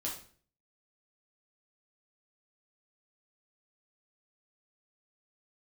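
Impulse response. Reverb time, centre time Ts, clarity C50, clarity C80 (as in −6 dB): 0.45 s, 30 ms, 6.0 dB, 11.0 dB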